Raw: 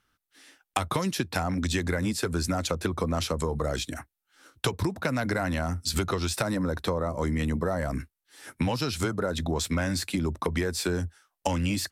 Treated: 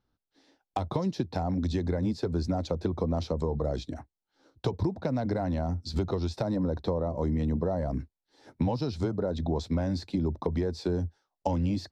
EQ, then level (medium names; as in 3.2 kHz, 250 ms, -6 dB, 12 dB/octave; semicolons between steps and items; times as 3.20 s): distance through air 230 m; high-order bell 1.9 kHz -13 dB; 0.0 dB